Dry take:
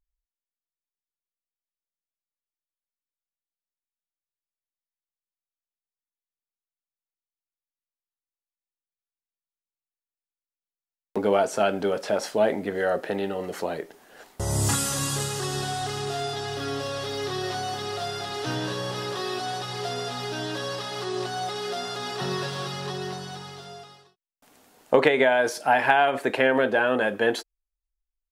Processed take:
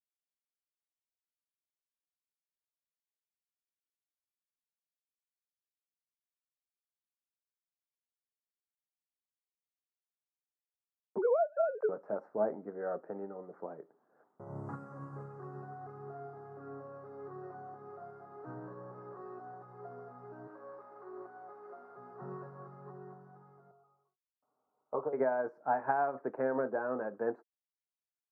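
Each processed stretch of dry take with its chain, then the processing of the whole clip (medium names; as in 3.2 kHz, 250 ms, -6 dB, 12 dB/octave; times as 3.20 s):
11.18–11.89 s: formants replaced by sine waves + transient shaper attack +2 dB, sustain +6 dB + three bands compressed up and down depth 100%
20.47–21.97 s: one-bit delta coder 32 kbps, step -36.5 dBFS + high-pass 310 Hz + doubling 25 ms -11 dB
23.71–25.13 s: steep low-pass 1.4 kHz 72 dB/octave + peaking EQ 240 Hz -11 dB 1.5 oct + comb of notches 170 Hz
whole clip: elliptic band-pass 130–1300 Hz, stop band 40 dB; upward expansion 1.5:1, over -36 dBFS; trim -8 dB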